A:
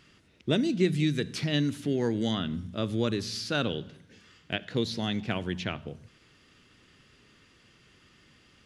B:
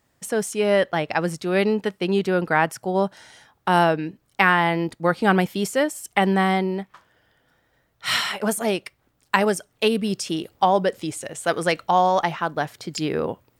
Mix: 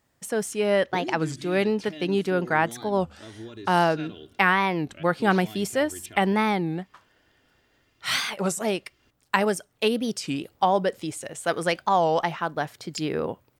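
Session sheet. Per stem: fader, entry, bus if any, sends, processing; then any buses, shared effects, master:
+2.0 dB, 0.45 s, no send, comb 2.9 ms, depth 80%; peak limiter -21 dBFS, peak gain reduction 9.5 dB; auto duck -13 dB, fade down 1.55 s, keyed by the second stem
-3.0 dB, 0.00 s, no send, none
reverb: none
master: warped record 33 1/3 rpm, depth 250 cents

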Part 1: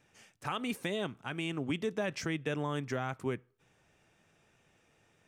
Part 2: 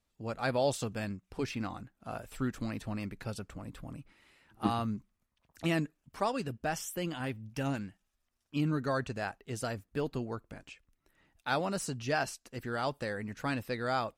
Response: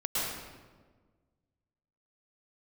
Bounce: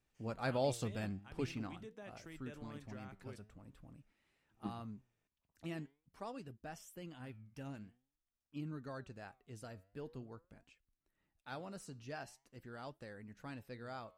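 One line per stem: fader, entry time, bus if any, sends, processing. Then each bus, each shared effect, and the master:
-14.0 dB, 0.00 s, no send, none
1.43 s -2.5 dB -> 2.04 s -12 dB, 0.00 s, no send, bass shelf 380 Hz +4.5 dB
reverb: none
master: flange 0.46 Hz, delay 2.4 ms, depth 8.6 ms, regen +89%

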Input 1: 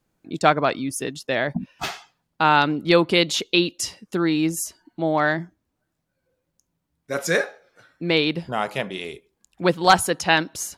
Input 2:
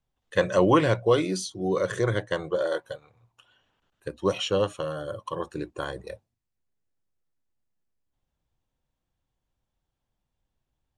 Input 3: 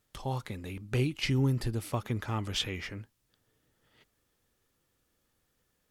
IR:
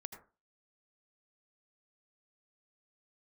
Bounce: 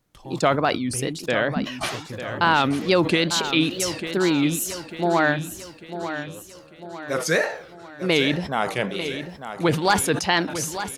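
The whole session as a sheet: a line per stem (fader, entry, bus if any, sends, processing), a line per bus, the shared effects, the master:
+0.5 dB, 0.00 s, no send, echo send -10.5 dB, peak limiter -8.5 dBFS, peak gain reduction 6.5 dB; wow and flutter 150 cents; decay stretcher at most 100 dB/s
-19.0 dB, 1.75 s, no send, no echo send, none
-5.0 dB, 0.00 s, muted 1.21–1.91 s, no send, no echo send, none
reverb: none
echo: feedback delay 897 ms, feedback 47%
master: none

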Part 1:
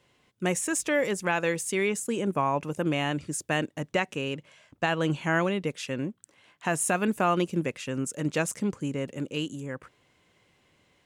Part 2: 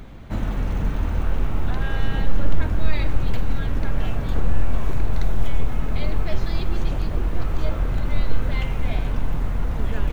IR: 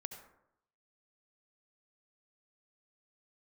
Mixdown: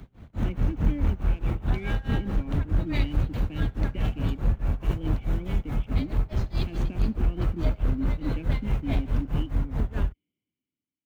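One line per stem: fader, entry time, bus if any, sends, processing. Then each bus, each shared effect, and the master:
-2.5 dB, 0.00 s, no send, cascade formant filter i
-7.0 dB, 0.00 s, send -8 dB, bass shelf 240 Hz +8 dB; tremolo 4.7 Hz, depth 99%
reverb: on, RT60 0.80 s, pre-delay 62 ms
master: high-pass 45 Hz 12 dB/octave; waveshaping leveller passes 1; three bands expanded up and down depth 40%

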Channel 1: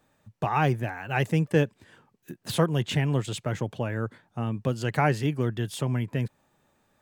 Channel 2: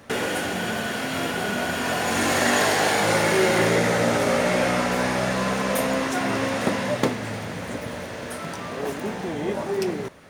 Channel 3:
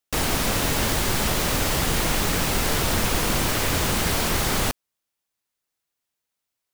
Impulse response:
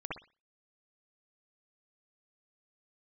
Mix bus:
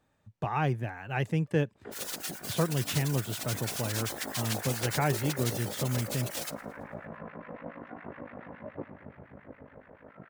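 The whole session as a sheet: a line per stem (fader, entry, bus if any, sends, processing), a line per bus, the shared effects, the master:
-5.5 dB, 0.00 s, no send, no echo send, peaking EQ 61 Hz +7 dB 1.3 oct
-11.5 dB, 1.75 s, no send, echo send -14.5 dB, harmonic tremolo 7.1 Hz, depth 100%, crossover 1.1 kHz; low-pass 2 kHz 24 dB/octave; ring modulator 26 Hz
+0.5 dB, 1.80 s, no send, echo send -23 dB, spectral gate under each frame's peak -25 dB weak; reverb removal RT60 1 s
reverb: none
echo: feedback delay 111 ms, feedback 49%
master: treble shelf 9.4 kHz -7.5 dB

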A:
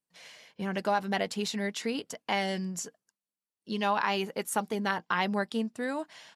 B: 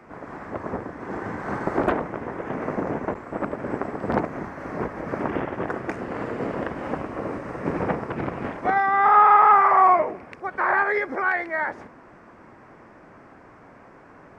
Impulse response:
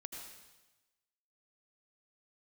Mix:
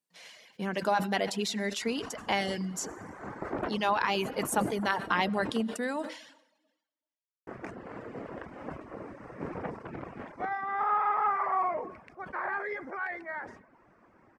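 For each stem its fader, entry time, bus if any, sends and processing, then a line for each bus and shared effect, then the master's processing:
-2.0 dB, 0.00 s, send -3 dB, high-pass 140 Hz
-14.0 dB, 1.75 s, muted 5.63–7.47 s, send -5.5 dB, none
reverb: on, RT60 1.1 s, pre-delay 73 ms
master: reverb removal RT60 0.6 s; decay stretcher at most 90 dB/s

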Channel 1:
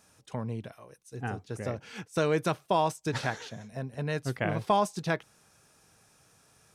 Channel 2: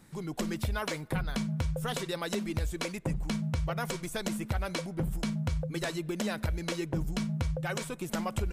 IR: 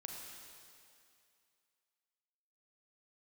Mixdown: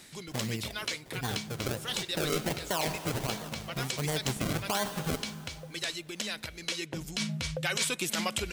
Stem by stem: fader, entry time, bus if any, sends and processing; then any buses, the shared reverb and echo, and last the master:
-2.0 dB, 0.00 s, send -7 dB, decimation with a swept rate 34×, swing 100% 1.4 Hz
+2.0 dB, 0.00 s, no send, frequency weighting D; auto duck -10 dB, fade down 0.30 s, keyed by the first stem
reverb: on, RT60 2.4 s, pre-delay 32 ms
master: treble shelf 3.6 kHz +6.5 dB; peak limiter -17.5 dBFS, peak gain reduction 11 dB

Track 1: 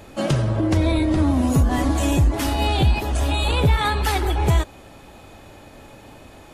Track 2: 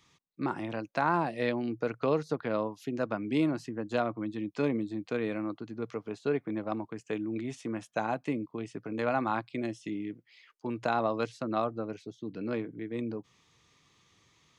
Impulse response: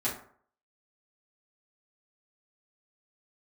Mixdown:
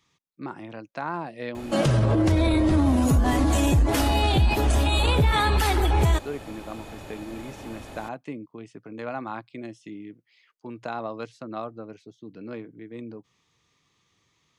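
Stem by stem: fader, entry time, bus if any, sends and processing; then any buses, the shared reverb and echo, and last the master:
+2.5 dB, 1.55 s, no send, none
-3.5 dB, 0.00 s, no send, none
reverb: none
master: peak limiter -13 dBFS, peak gain reduction 7 dB

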